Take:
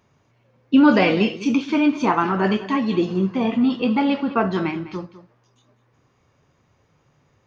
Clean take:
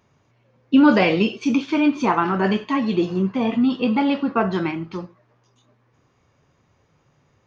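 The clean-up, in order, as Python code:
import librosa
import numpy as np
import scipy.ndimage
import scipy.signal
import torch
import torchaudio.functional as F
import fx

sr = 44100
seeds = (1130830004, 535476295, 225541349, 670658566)

y = fx.fix_echo_inverse(x, sr, delay_ms=202, level_db=-15.5)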